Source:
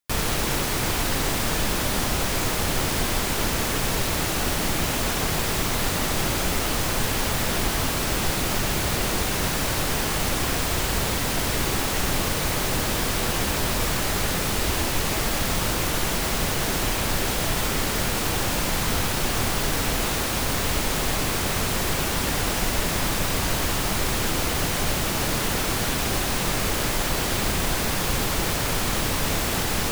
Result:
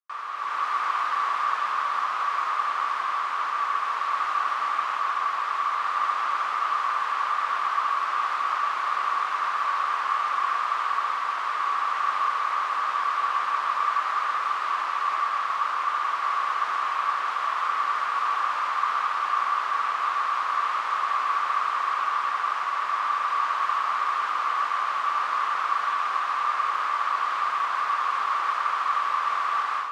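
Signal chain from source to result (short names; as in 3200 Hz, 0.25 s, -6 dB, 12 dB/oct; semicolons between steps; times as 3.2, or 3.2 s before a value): AGC gain up to 11.5 dB; ladder band-pass 1200 Hz, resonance 85%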